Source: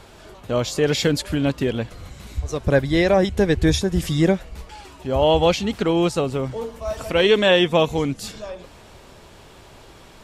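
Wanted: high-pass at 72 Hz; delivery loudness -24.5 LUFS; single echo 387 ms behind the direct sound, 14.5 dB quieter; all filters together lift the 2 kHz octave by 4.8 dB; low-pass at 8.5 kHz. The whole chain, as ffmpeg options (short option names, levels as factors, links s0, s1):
-af "highpass=72,lowpass=8500,equalizer=f=2000:t=o:g=6,aecho=1:1:387:0.188,volume=0.562"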